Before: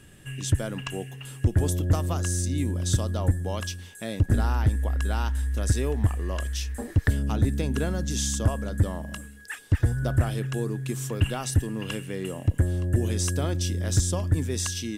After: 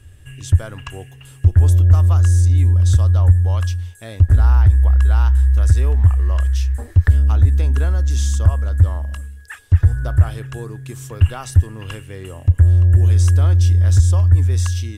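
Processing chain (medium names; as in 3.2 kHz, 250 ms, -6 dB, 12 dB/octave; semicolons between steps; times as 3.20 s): resonant low shelf 120 Hz +11 dB, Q 3; in parallel at +3 dB: peak limiter -4.5 dBFS, peak gain reduction 9 dB; on the sum: dynamic bell 1.2 kHz, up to +7 dB, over -36 dBFS, Q 1; trim -9.5 dB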